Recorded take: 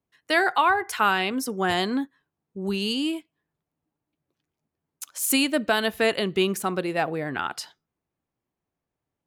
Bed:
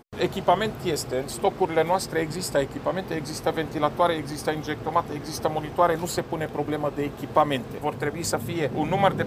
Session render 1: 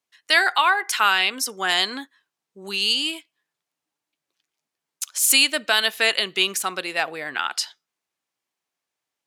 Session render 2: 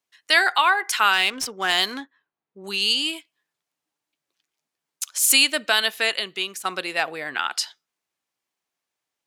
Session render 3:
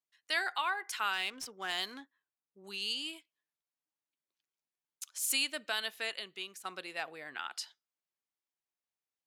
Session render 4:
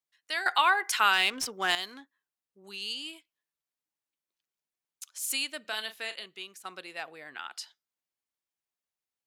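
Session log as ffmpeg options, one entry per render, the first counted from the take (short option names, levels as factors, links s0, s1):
-af "highpass=f=830:p=1,equalizer=f=4900:w=0.33:g=10.5"
-filter_complex "[0:a]asettb=1/sr,asplit=3[s0][s1][s2];[s0]atrim=end=1.134[s3];[s1]atrim=start=1.13:end=2.64,asetpts=PTS-STARTPTS,afade=t=in:d=0.004:c=qsin,afade=t=out:st=1.506:d=0.004:c=qsin,adynamicsmooth=sensitivity=6.5:basefreq=2300[s4];[s2]atrim=start=2.636[s5];[s3][s4]acrossfade=d=0.004:c1=hsin:c2=qsin[s6];[s6][s5]acrossfade=d=0.004:c1=qsin:c2=hsin,asplit=2[s7][s8];[s7]atrim=end=6.65,asetpts=PTS-STARTPTS,afade=t=out:st=5.69:d=0.96:silence=0.298538[s9];[s8]atrim=start=6.65,asetpts=PTS-STARTPTS,afade=t=in:d=0.004:c=hsin:silence=0.298538[s10];[s9][s10]concat=n=2:v=0:a=1"
-af "volume=0.178"
-filter_complex "[0:a]asettb=1/sr,asplit=3[s0][s1][s2];[s0]atrim=end=5.614[s3];[s1]atrim=start=5.61:end=6.26,asetpts=PTS-STARTPTS,afade=t=in:d=0.004:c=qsin,afade=t=out:st=0.646:d=0.004:c=qsin,asplit=2[s4][s5];[s5]adelay=37,volume=0.299[s6];[s4][s6]amix=inputs=2:normalize=0,atrim=end_sample=28665[s7];[s2]atrim=start=6.256[s8];[s3][s7]acrossfade=d=0.004:c1=hsin:c2=qsin[s9];[s9][s8]acrossfade=d=0.004:c1=qsin:c2=hsin,asplit=3[s10][s11][s12];[s10]atrim=end=0.462[s13];[s11]atrim=start=0.458:end=1.752,asetpts=PTS-STARTPTS,volume=3.16[s14];[s12]atrim=start=1.748[s15];[s13][s14]acrossfade=d=0.004:c1=hsin:c2=hsin[s16];[s16][s15]acrossfade=d=0.004:c1=hsin:c2=hsin"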